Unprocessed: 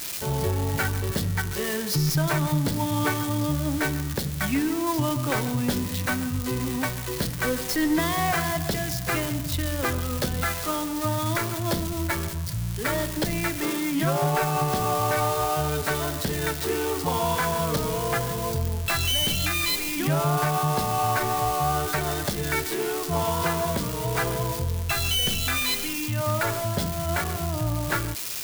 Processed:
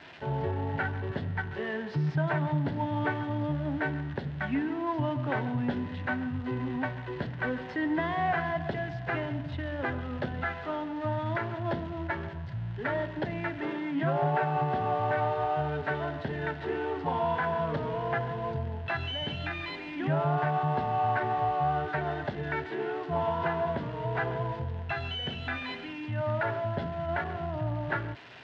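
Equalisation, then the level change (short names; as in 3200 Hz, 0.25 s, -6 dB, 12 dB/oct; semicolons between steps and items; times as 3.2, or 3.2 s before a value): speaker cabinet 130–2400 Hz, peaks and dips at 190 Hz -10 dB, 320 Hz -6 dB, 490 Hz -7 dB, 1200 Hz -10 dB, 2300 Hz -9 dB; 0.0 dB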